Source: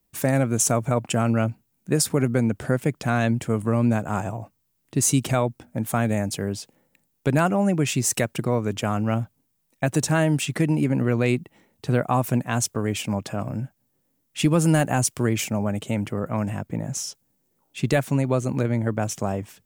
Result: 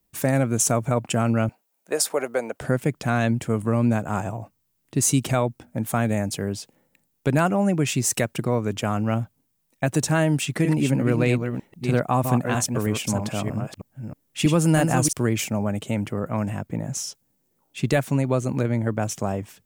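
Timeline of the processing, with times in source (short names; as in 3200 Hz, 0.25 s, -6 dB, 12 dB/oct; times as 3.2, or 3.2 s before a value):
1.49–2.61 resonant high-pass 600 Hz, resonance Q 2
10.33–15.13 reverse delay 0.317 s, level -5.5 dB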